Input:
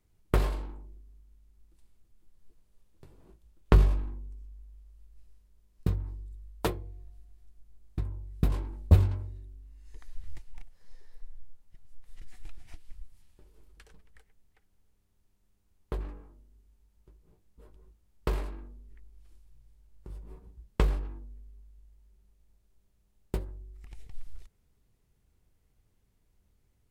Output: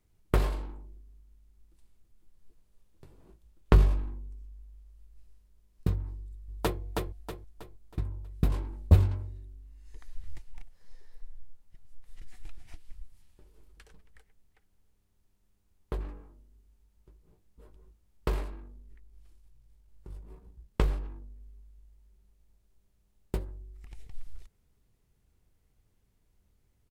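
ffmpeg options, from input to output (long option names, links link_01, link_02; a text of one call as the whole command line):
ffmpeg -i in.wav -filter_complex "[0:a]asplit=2[link_01][link_02];[link_02]afade=type=in:start_time=6.16:duration=0.01,afade=type=out:start_time=6.8:duration=0.01,aecho=0:1:320|640|960|1280|1600:0.668344|0.267338|0.106935|0.042774|0.0171096[link_03];[link_01][link_03]amix=inputs=2:normalize=0,asettb=1/sr,asplit=3[link_04][link_05][link_06];[link_04]atrim=end=18.444[link_07];[link_05]atrim=start=18.44:end=21.41,asetpts=PTS-STARTPTS,afade=type=in:duration=0.004:curve=qsin,afade=type=out:start_time=2.966:duration=0.004:curve=qsin,aeval=exprs='if(lt(val(0),0),0.708*val(0),val(0))':channel_layout=same[link_08];[link_06]atrim=start=21.406[link_09];[link_07][link_08]acrossfade=duration=0.004:curve1=hsin:curve2=qsin[link_10];[link_10][link_09]acrossfade=duration=0.004:curve1=qsin:curve2=hsin" out.wav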